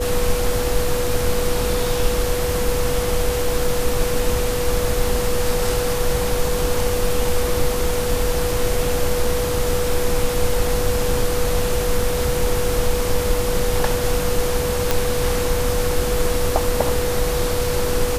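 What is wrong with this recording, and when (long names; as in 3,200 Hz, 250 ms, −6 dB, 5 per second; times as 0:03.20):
whistle 490 Hz −22 dBFS
0:14.91: click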